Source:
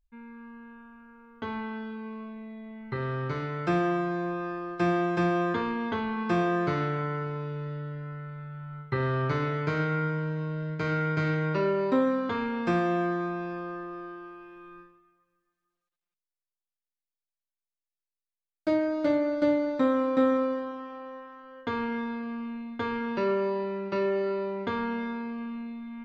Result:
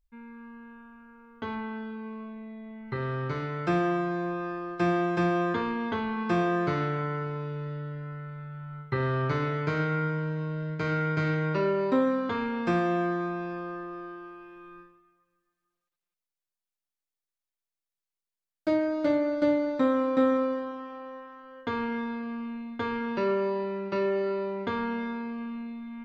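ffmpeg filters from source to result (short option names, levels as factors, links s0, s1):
-filter_complex "[0:a]asettb=1/sr,asplit=3[s0][s1][s2];[s0]atrim=end=1.554[s3];[s1]atrim=start=1.55:end=2.88,asetpts=PTS-STARTPTS,afade=t=in:d=0.004:c=qsin,afade=t=out:st=1.326:d=0.004:c=qsin,highshelf=f=4400:g=-7[s4];[s2]atrim=start=2.876[s5];[s3][s4]acrossfade=d=0.004:c1=hsin:c2=qsin[s6];[s6][s5]acrossfade=d=0.004:c1=qsin:c2=hsin"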